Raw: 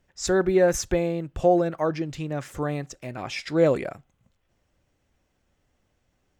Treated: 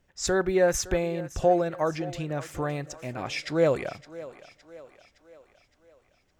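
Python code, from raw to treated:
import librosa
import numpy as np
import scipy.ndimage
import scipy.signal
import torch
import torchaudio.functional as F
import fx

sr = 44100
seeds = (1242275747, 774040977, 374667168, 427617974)

y = fx.dynamic_eq(x, sr, hz=250.0, q=0.85, threshold_db=-32.0, ratio=4.0, max_db=-6)
y = fx.echo_thinned(y, sr, ms=564, feedback_pct=53, hz=240.0, wet_db=-16.5)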